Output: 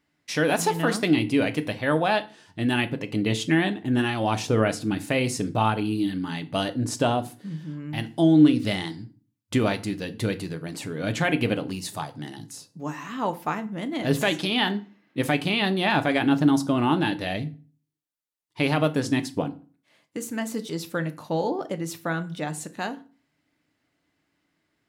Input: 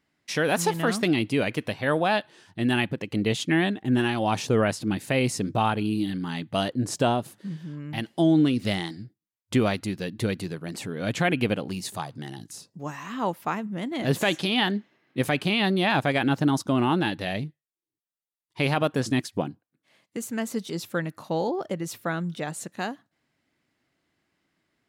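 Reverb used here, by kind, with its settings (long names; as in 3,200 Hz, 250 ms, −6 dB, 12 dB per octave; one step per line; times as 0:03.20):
feedback delay network reverb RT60 0.38 s, low-frequency decay 1.3×, high-frequency decay 0.8×, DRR 8.5 dB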